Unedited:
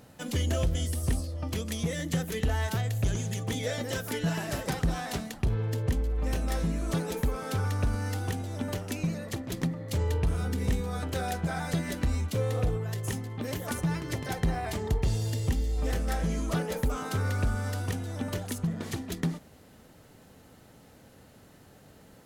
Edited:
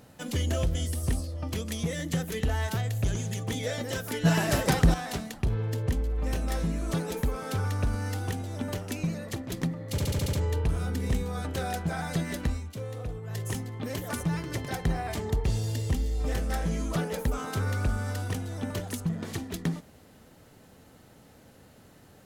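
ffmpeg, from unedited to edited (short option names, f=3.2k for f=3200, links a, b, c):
-filter_complex "[0:a]asplit=11[a][b][c][d][e][f][g][h][i][j][k];[a]atrim=end=4.252[l];[b]atrim=start=4.248:end=4.942,asetpts=PTS-STARTPTS,volume=7dB[m];[c]atrim=start=4.938:end=9.982[n];[d]atrim=start=9.908:end=9.982[o];[e]atrim=start=9.908:end=9.982[p];[f]atrim=start=9.908:end=9.982[q];[g]atrim=start=9.908:end=9.982[r];[h]atrim=start=9.908:end=9.982[s];[i]atrim=start=9.908:end=12.19,asetpts=PTS-STARTPTS,afade=t=out:st=2.132:d=0.15:silence=0.398107[t];[j]atrim=start=12.19:end=12.8,asetpts=PTS-STARTPTS,volume=-8dB[u];[k]atrim=start=12.8,asetpts=PTS-STARTPTS,afade=t=in:d=0.15:silence=0.398107[v];[l][m]acrossfade=d=0.004:c1=hsin:c2=hsin[w];[w][n]acrossfade=d=0.004:c1=hsin:c2=hsin[x];[x][o]acrossfade=d=0.004:c1=hsin:c2=hsin[y];[y][p]acrossfade=d=0.004:c1=hsin:c2=hsin[z];[z][q]acrossfade=d=0.004:c1=hsin:c2=hsin[aa];[aa][r]acrossfade=d=0.004:c1=hsin:c2=hsin[ab];[ab][s]acrossfade=d=0.004:c1=hsin:c2=hsin[ac];[t][u][v]concat=n=3:v=0:a=1[ad];[ac][ad]acrossfade=d=0.004:c1=hsin:c2=hsin"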